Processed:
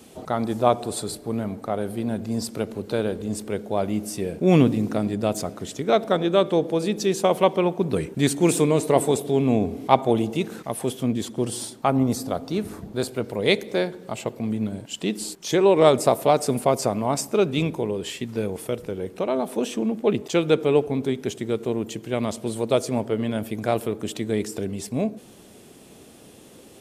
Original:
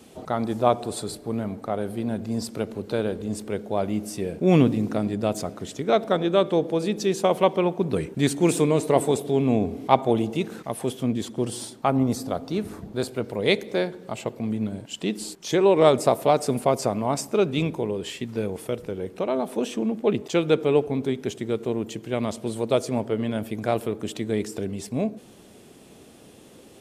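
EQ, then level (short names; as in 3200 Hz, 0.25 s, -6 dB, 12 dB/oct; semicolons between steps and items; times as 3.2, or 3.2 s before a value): high shelf 7300 Hz +4.5 dB; +1.0 dB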